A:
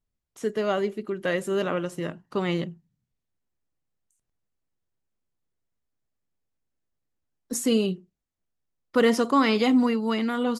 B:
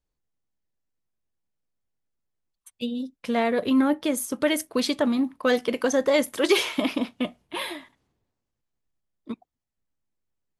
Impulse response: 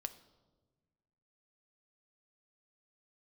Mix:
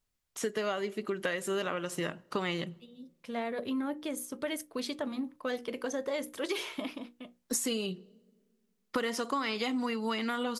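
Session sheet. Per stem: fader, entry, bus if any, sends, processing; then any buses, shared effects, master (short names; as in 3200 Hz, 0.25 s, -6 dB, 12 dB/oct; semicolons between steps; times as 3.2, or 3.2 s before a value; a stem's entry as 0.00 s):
+1.5 dB, 0.00 s, send -15 dB, tilt shelf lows -5 dB, about 700 Hz
-10.0 dB, 0.00 s, no send, notches 60/120/180/240/300/360/420/480/540 Hz; auto duck -14 dB, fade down 0.75 s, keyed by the first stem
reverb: on, RT60 1.3 s, pre-delay 4 ms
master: compressor 10:1, threshold -29 dBFS, peak gain reduction 16.5 dB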